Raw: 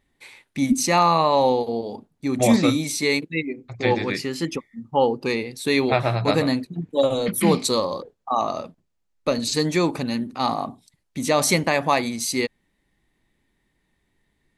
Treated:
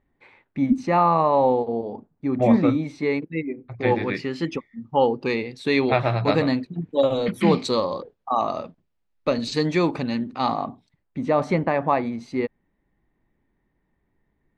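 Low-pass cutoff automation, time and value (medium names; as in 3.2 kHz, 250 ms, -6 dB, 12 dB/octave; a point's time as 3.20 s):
3.35 s 1.5 kHz
4.55 s 3.7 kHz
10.49 s 3.7 kHz
11.25 s 1.4 kHz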